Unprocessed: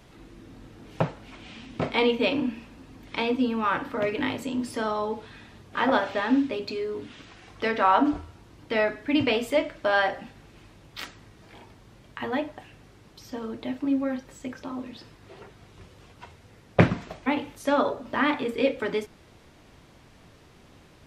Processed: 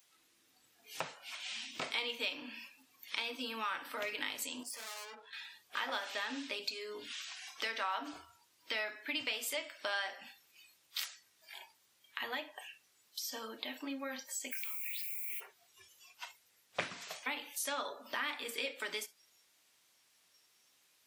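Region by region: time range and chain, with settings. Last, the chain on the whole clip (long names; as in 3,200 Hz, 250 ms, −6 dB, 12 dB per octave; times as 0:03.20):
0:04.63–0:05.33: high-shelf EQ 2,700 Hz −10.5 dB + tube saturation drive 42 dB, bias 0.55
0:14.51–0:15.39: high-shelf EQ 2,900 Hz −11 dB + background noise violet −55 dBFS + high-pass with resonance 2,300 Hz, resonance Q 12
whole clip: noise reduction from a noise print of the clip's start 17 dB; first difference; downward compressor 3 to 1, threshold −51 dBFS; level +13 dB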